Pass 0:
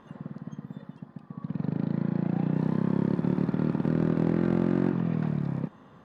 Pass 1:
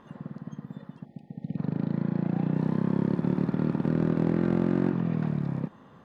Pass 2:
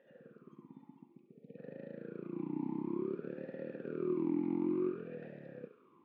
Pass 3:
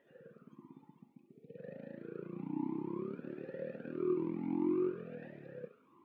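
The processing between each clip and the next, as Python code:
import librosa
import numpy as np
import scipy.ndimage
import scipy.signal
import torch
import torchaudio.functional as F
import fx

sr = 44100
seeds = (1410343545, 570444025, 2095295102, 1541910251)

y1 = fx.spec_erase(x, sr, start_s=1.05, length_s=0.52, low_hz=880.0, high_hz=1800.0)
y2 = fx.echo_thinned(y1, sr, ms=69, feedback_pct=65, hz=570.0, wet_db=-8.5)
y2 = fx.vowel_sweep(y2, sr, vowels='e-u', hz=0.56)
y3 = fx.comb_cascade(y2, sr, direction='rising', hz=1.5)
y3 = y3 * 10.0 ** (5.0 / 20.0)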